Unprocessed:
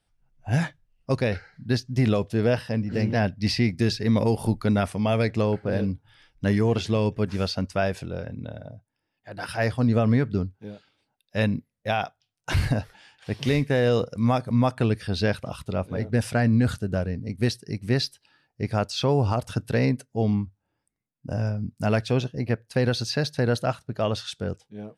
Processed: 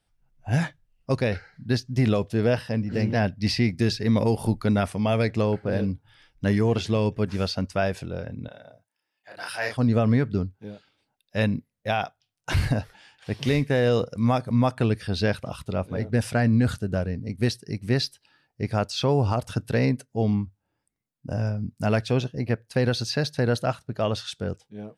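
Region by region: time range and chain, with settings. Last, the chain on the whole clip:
0:08.48–0:09.77: high-pass filter 1,100 Hz 6 dB per octave + double-tracking delay 33 ms −2 dB
whole clip: no processing

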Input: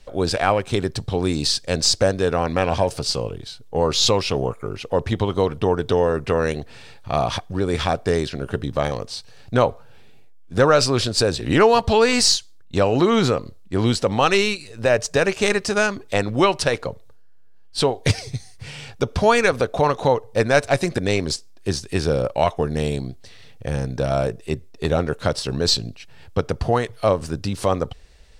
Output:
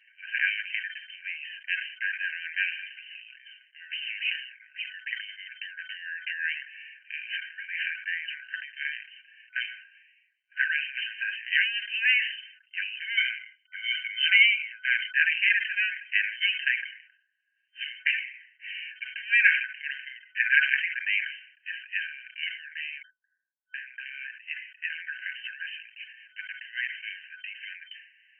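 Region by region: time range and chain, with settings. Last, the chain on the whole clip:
0:13.17–0:15.14: EQ curve with evenly spaced ripples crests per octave 1.8, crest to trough 15 dB + downward expander −24 dBFS
0:23.02–0:23.74: low shelf with overshoot 170 Hz −8.5 dB, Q 3 + wrap-around overflow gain 24.5 dB + Butterworth low-pass 1,100 Hz 96 dB per octave
whole clip: brick-wall band-pass 1,500–3,100 Hz; comb filter 6.8 ms, depth 60%; level that may fall only so fast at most 94 dB per second; level +1.5 dB

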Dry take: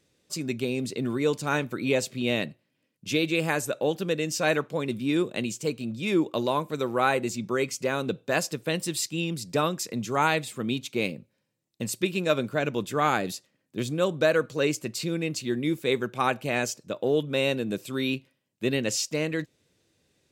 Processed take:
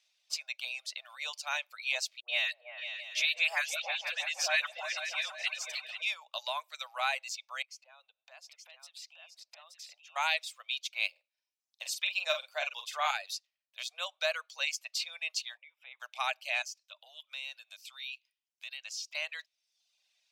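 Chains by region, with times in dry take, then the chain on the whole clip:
0:02.20–0:06.02: parametric band 1,800 Hz +6.5 dB 0.51 octaves + all-pass dispersion highs, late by 88 ms, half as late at 860 Hz + echo whose low-pass opens from repeat to repeat 164 ms, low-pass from 400 Hz, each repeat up 2 octaves, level −3 dB
0:07.62–0:10.16: high-shelf EQ 2,800 Hz −11.5 dB + downward compressor 8 to 1, threshold −41 dBFS + single-tap delay 874 ms −4.5 dB
0:11.11–0:13.11: low-shelf EQ 430 Hz +7.5 dB + double-tracking delay 47 ms −5 dB
0:15.57–0:16.00: downward compressor 4 to 1, threshold −39 dBFS + Savitzky-Golay smoothing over 25 samples
0:16.62–0:19.15: high-pass filter 1,500 Hz 6 dB per octave + downward compressor 2 to 1, threshold −43 dBFS
whole clip: flat-topped bell 3,700 Hz +10 dB; reverb reduction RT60 0.72 s; Butterworth high-pass 620 Hz 72 dB per octave; level −8.5 dB

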